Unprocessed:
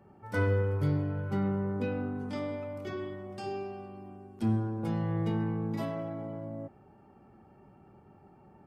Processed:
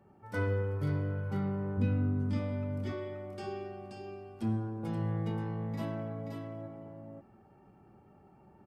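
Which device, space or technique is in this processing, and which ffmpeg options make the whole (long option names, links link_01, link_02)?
ducked delay: -filter_complex "[0:a]asplit=3[link_01][link_02][link_03];[link_01]afade=type=out:start_time=1.77:duration=0.02[link_04];[link_02]asubboost=boost=10:cutoff=190,afade=type=in:start_time=1.77:duration=0.02,afade=type=out:start_time=2.38:duration=0.02[link_05];[link_03]afade=type=in:start_time=2.38:duration=0.02[link_06];[link_04][link_05][link_06]amix=inputs=3:normalize=0,asplit=3[link_07][link_08][link_09];[link_08]adelay=529,volume=-4dB[link_10];[link_09]apad=whole_len=405518[link_11];[link_10][link_11]sidechaincompress=threshold=-29dB:ratio=8:attack=16:release=1010[link_12];[link_07][link_12]amix=inputs=2:normalize=0,volume=-4dB"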